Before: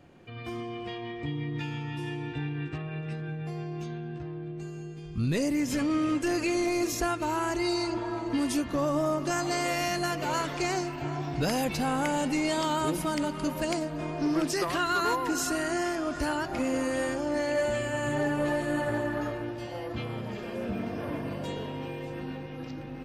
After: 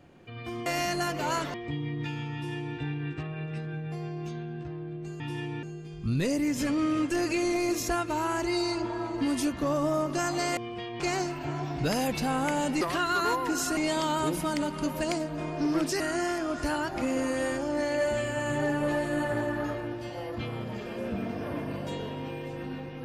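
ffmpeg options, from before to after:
-filter_complex "[0:a]asplit=10[a][b][c][d][e][f][g][h][i][j];[a]atrim=end=0.662[k];[b]atrim=start=9.688:end=10.572[l];[c]atrim=start=1.088:end=4.752[m];[d]atrim=start=1.888:end=2.322[n];[e]atrim=start=4.748:end=9.692[o];[f]atrim=start=0.658:end=1.092[p];[g]atrim=start=10.568:end=12.382[q];[h]atrim=start=14.608:end=15.572[r];[i]atrim=start=12.378:end=14.612[s];[j]atrim=start=15.568[t];[k][l]acrossfade=d=0.004:c1=hsin:c2=hsin[u];[u][m]acrossfade=d=0.004:c1=hsin:c2=hsin[v];[v][n]acrossfade=d=0.004:c1=hsin:c2=hsin[w];[w][o]acrossfade=d=0.004:c1=hsin:c2=hsin[x];[x][p]acrossfade=d=0.004:c1=hsin:c2=hsin[y];[y][q]acrossfade=d=0.004:c1=hsin:c2=hsin[z];[z][r]acrossfade=d=0.004:c1=hsin:c2=hsin[aa];[aa][s]acrossfade=d=0.004:c1=hsin:c2=hsin[ab];[ab][t]acrossfade=d=0.004:c1=hsin:c2=hsin"

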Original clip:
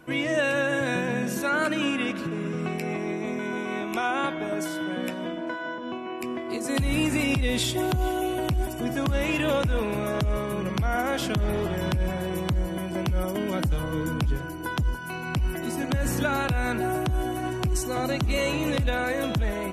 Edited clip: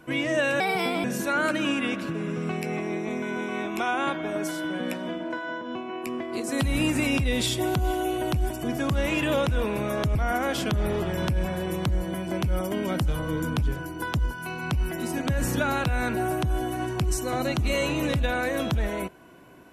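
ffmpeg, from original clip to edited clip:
-filter_complex "[0:a]asplit=4[a][b][c][d];[a]atrim=end=0.604[e];[b]atrim=start=0.6:end=1.21,asetpts=PTS-STARTPTS,asetrate=60858,aresample=44100,atrim=end_sample=19493,asetpts=PTS-STARTPTS[f];[c]atrim=start=1.206:end=10.322[g];[d]atrim=start=10.788[h];[e][f]acrossfade=d=0.004:c1=hsin:c2=hsin[i];[i][g]acrossfade=d=0.004:c1=hsin:c2=hsin[j];[j][h]acrossfade=d=0.004:c1=hsin:c2=hsin"

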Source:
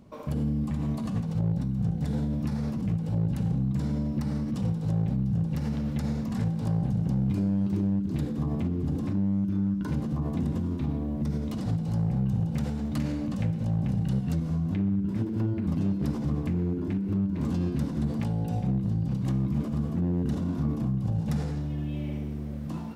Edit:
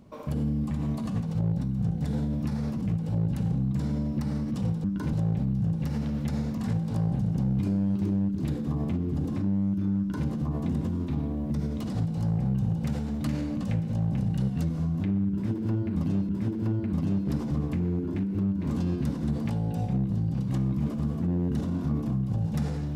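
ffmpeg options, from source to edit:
-filter_complex "[0:a]asplit=4[a][b][c][d];[a]atrim=end=4.842[e];[b]atrim=start=9.688:end=9.982[f];[c]atrim=start=4.838:end=16.002[g];[d]atrim=start=15.028[h];[e][f]acrossfade=d=0.004:c1=hsin:c2=hsin[i];[i][g]acrossfade=d=0.004:c1=hsin:c2=hsin[j];[j][h]acrossfade=d=0.004:c1=hsin:c2=hsin"

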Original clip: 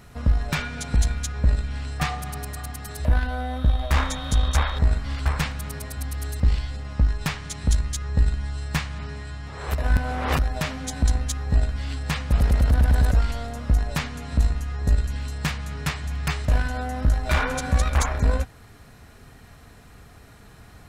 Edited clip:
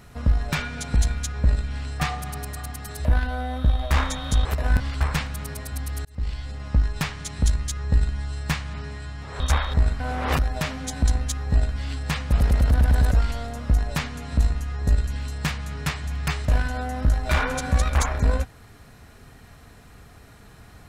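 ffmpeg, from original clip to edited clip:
-filter_complex "[0:a]asplit=6[a][b][c][d][e][f];[a]atrim=end=4.452[g];[b]atrim=start=9.648:end=10.002[h];[c]atrim=start=5.048:end=6.3,asetpts=PTS-STARTPTS,afade=t=out:st=1.248:d=0.004:c=hsin[i];[d]atrim=start=6.3:end=9.652,asetpts=PTS-STARTPTS,afade=t=in:d=0.71:c=qsin[j];[e]atrim=start=4.448:end=5.052[k];[f]atrim=start=9.998[l];[g][h]acrossfade=d=0.004:c1=hsin:c2=hsin[m];[i][j]concat=n=2:v=0:a=1[n];[m][n]acrossfade=d=0.004:c1=hsin:c2=hsin[o];[o][k]acrossfade=d=0.004:c1=hsin:c2=hsin[p];[p][l]acrossfade=d=0.004:c1=hsin:c2=hsin"

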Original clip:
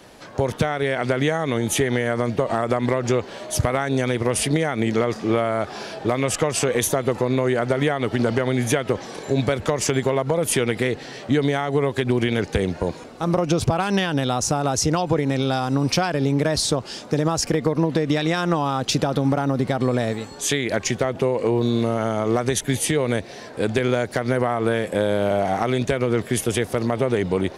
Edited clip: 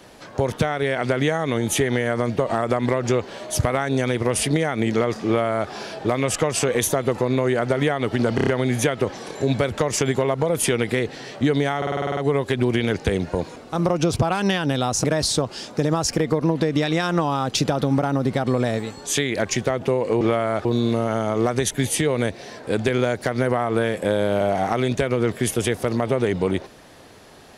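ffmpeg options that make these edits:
-filter_complex "[0:a]asplit=16[a][b][c][d][e][f][g][h][i][j][k][l][m][n][o][p];[a]atrim=end=8.382[q];[b]atrim=start=8.348:end=8.382[r];[c]atrim=start=8.348:end=8.382[s];[d]atrim=start=8.348:end=8.382[t];[e]atrim=start=8.348:end=11.702[u];[f]atrim=start=11.648:end=11.702[v];[g]atrim=start=11.648:end=11.702[w];[h]atrim=start=11.648:end=11.702[x];[i]atrim=start=11.648:end=11.702[y];[j]atrim=start=11.648:end=11.702[z];[k]atrim=start=11.648:end=11.702[aa];[l]atrim=start=11.648:end=11.702[ab];[m]atrim=start=11.648:end=14.522[ac];[n]atrim=start=16.378:end=21.552[ad];[o]atrim=start=5.258:end=5.702[ae];[p]atrim=start=21.548[af];[q][r]acrossfade=d=0.004:c1=hsin:c2=hsin[ag];[ag][s]acrossfade=d=0.004:c1=hsin:c2=hsin[ah];[ah][t]acrossfade=d=0.004:c1=hsin:c2=hsin[ai];[ai][u]acrossfade=d=0.004:c1=hsin:c2=hsin[aj];[aj][v]acrossfade=d=0.004:c1=hsin:c2=hsin[ak];[ak][w]acrossfade=d=0.004:c1=hsin:c2=hsin[al];[al][x]acrossfade=d=0.004:c1=hsin:c2=hsin[am];[am][y]acrossfade=d=0.004:c1=hsin:c2=hsin[an];[an][z]acrossfade=d=0.004:c1=hsin:c2=hsin[ao];[ao][aa]acrossfade=d=0.004:c1=hsin:c2=hsin[ap];[ap][ab]acrossfade=d=0.004:c1=hsin:c2=hsin[aq];[aq][ac]acrossfade=d=0.004:c1=hsin:c2=hsin[ar];[ar][ad]acrossfade=d=0.004:c1=hsin:c2=hsin[as];[as][ae]acrossfade=d=0.004:c1=hsin:c2=hsin[at];[at][af]acrossfade=d=0.004:c1=hsin:c2=hsin"

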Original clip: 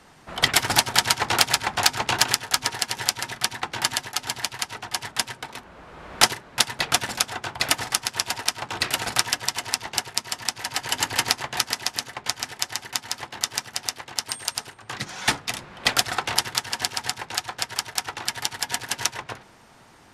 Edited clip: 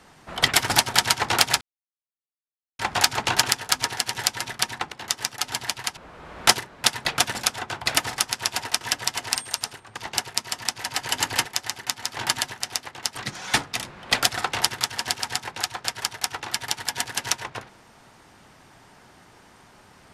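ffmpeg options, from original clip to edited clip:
-filter_complex "[0:a]asplit=12[a][b][c][d][e][f][g][h][i][j][k][l];[a]atrim=end=1.61,asetpts=PTS-STARTPTS,afade=t=out:st=1.606:d=0.004:c=hsin,apad=pad_dur=1.18[m];[b]atrim=start=1.61:end=3.742,asetpts=PTS-STARTPTS,afade=t=in:d=0.004:c=hsin[n];[c]atrim=start=13.248:end=13.692[o];[d]atrim=start=4.108:end=4.722[p];[e]atrim=start=5.708:end=8.552[q];[f]atrim=start=9.218:end=9.772[r];[g]atrim=start=14.298:end=14.912[s];[h]atrim=start=9.768:end=11.252[t];[i]atrim=start=12.508:end=13.252[u];[j]atrim=start=3.738:end=4.112[v];[k]atrim=start=13.688:end=14.302[w];[l]atrim=start=14.908[x];[m][n]concat=n=2:v=0:a=1[y];[y][o]acrossfade=d=0.004:c1=hsin:c2=hsin[z];[z][p]acrossfade=d=0.004:c1=hsin:c2=hsin[aa];[aa][q]acrossfade=d=0.004:c1=hsin:c2=hsin[ab];[ab][r]acrossfade=d=0.004:c1=hsin:c2=hsin[ac];[ac][s]acrossfade=d=0.004:c1=hsin:c2=hsin[ad];[ad][t]acrossfade=d=0.004:c1=hsin:c2=hsin[ae];[ae][u]acrossfade=d=0.004:c1=hsin:c2=hsin[af];[af][v]acrossfade=d=0.004:c1=hsin:c2=hsin[ag];[ag][w]acrossfade=d=0.004:c1=hsin:c2=hsin[ah];[ah][x]acrossfade=d=0.004:c1=hsin:c2=hsin"

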